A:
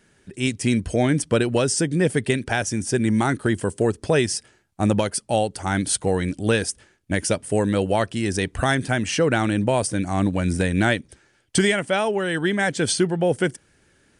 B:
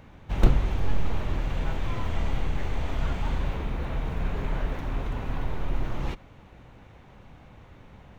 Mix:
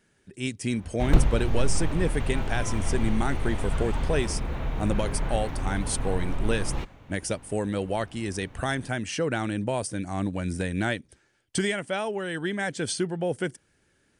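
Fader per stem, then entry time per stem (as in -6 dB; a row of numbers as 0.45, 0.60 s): -7.5, 0.0 dB; 0.00, 0.70 s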